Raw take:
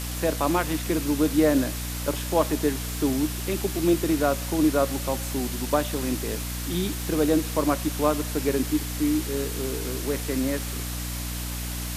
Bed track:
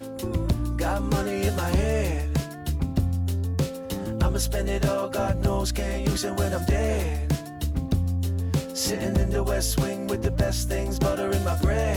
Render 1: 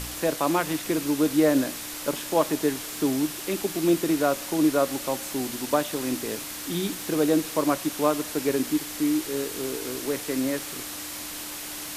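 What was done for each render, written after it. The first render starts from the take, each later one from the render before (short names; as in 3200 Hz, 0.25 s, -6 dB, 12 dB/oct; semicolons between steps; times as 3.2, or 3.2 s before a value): de-hum 60 Hz, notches 4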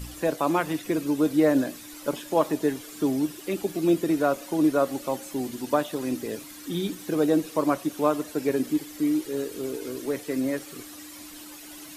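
denoiser 12 dB, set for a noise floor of -36 dBFS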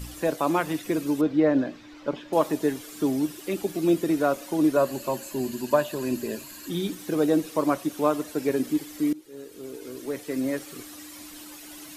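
1.21–2.33 air absorption 210 m; 4.76–6.7 ripple EQ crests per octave 1.4, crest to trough 9 dB; 9.13–10.54 fade in, from -20.5 dB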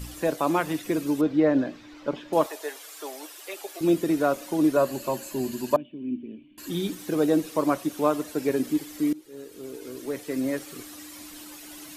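2.46–3.81 HPF 540 Hz 24 dB/oct; 5.76–6.58 vocal tract filter i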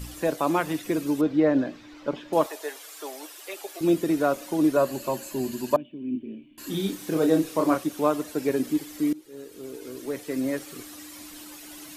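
6.11–7.84 doubler 31 ms -5 dB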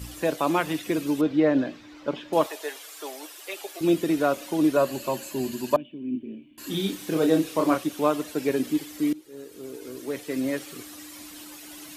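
HPF 40 Hz; dynamic EQ 3000 Hz, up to +5 dB, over -49 dBFS, Q 1.3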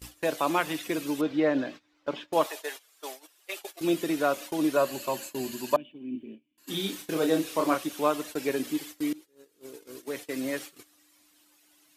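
gate -37 dBFS, range -19 dB; low shelf 410 Hz -8 dB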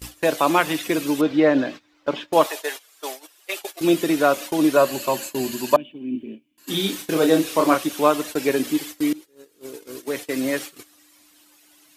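gain +8 dB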